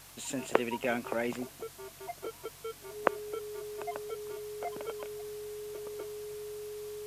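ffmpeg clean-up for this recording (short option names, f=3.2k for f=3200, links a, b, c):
-af "adeclick=t=4,bandreject=f=46.3:t=h:w=4,bandreject=f=92.6:t=h:w=4,bandreject=f=138.9:t=h:w=4,bandreject=f=420:w=30,afwtdn=0.0025"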